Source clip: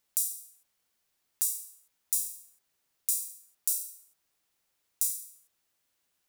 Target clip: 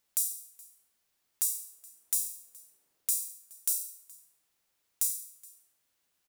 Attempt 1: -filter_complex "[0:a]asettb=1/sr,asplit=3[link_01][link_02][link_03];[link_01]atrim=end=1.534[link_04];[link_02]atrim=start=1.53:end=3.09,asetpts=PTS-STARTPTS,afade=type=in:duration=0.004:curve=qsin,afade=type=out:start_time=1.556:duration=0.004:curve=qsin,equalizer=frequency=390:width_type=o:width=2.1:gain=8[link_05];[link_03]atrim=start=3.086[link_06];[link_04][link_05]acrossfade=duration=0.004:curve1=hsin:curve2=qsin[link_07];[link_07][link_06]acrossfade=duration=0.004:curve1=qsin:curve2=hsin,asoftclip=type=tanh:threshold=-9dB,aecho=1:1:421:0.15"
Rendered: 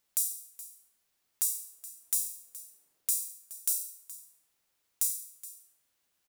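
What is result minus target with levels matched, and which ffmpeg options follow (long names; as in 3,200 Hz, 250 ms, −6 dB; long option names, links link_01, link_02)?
echo-to-direct +7 dB
-filter_complex "[0:a]asettb=1/sr,asplit=3[link_01][link_02][link_03];[link_01]atrim=end=1.534[link_04];[link_02]atrim=start=1.53:end=3.09,asetpts=PTS-STARTPTS,afade=type=in:duration=0.004:curve=qsin,afade=type=out:start_time=1.556:duration=0.004:curve=qsin,equalizer=frequency=390:width_type=o:width=2.1:gain=8[link_05];[link_03]atrim=start=3.086[link_06];[link_04][link_05]acrossfade=duration=0.004:curve1=hsin:curve2=qsin[link_07];[link_07][link_06]acrossfade=duration=0.004:curve1=qsin:curve2=hsin,asoftclip=type=tanh:threshold=-9dB,aecho=1:1:421:0.0668"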